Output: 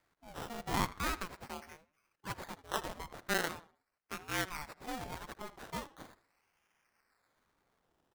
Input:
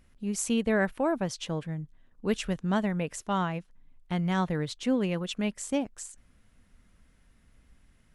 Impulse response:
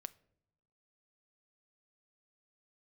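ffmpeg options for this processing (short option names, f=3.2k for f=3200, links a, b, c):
-filter_complex "[0:a]highpass=760,highshelf=f=2.4k:t=q:w=1.5:g=-7,acrusher=samples=16:mix=1:aa=0.000001:lfo=1:lforange=9.6:lforate=0.41,asplit=2[a][b];[b]adelay=79,lowpass=f=4.4k:p=1,volume=-16.5dB,asplit=2[c][d];[d]adelay=79,lowpass=f=4.4k:p=1,volume=0.32,asplit=2[e][f];[f]adelay=79,lowpass=f=4.4k:p=1,volume=0.32[g];[c][e][g]amix=inputs=3:normalize=0[h];[a][h]amix=inputs=2:normalize=0,aeval=exprs='val(0)*sin(2*PI*430*n/s+430*0.45/0.92*sin(2*PI*0.92*n/s))':c=same"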